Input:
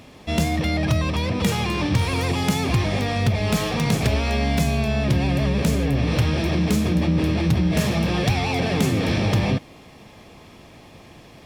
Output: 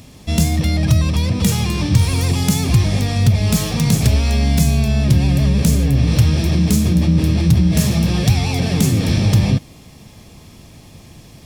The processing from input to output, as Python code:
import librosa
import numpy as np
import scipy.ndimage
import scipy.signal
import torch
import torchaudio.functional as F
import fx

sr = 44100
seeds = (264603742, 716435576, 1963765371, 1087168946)

y = fx.bass_treble(x, sr, bass_db=11, treble_db=13)
y = F.gain(torch.from_numpy(y), -2.5).numpy()